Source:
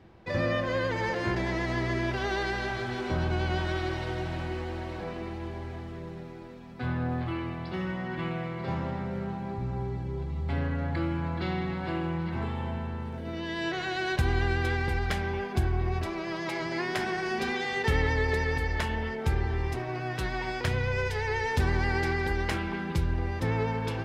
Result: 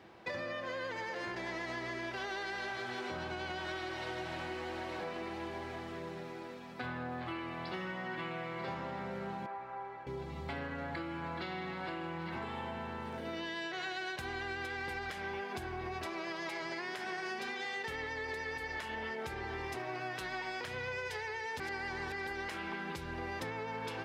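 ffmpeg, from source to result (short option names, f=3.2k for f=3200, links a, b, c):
-filter_complex "[0:a]asettb=1/sr,asplit=3[a][b][c];[a]atrim=end=9.464[d];[b]atrim=start=9.46:end=10.07,asetpts=PTS-STARTPTS,afade=t=in:d=0.004:c=qsin,afade=t=out:st=0.606:d=0.004:c=qsin,acrossover=split=550 2300:gain=0.0794 1 0.1[e][f][g];[e][f][g]amix=inputs=3:normalize=0[h];[c]atrim=start=10.066[i];[d][h]acrossfade=d=0.004:c1=hsin:c2=qsin[j];[j][i]acrossfade=d=0.004:c1=qsin:c2=hsin,asplit=3[k][l][m];[k]atrim=end=21.602[n];[l]atrim=start=21.598:end=22.122,asetpts=PTS-STARTPTS,areverse[o];[m]atrim=start=22.118[p];[n][o]acrossfade=d=0.004:c1=hsin:c2=hsin[q];[q][p]acrossfade=d=0.004:c1=hsin:c2=hsin,highpass=f=560:p=1,alimiter=level_in=3.5dB:limit=-24dB:level=0:latency=1:release=319,volume=-3.5dB,acompressor=threshold=-41dB:ratio=6,volume=4dB"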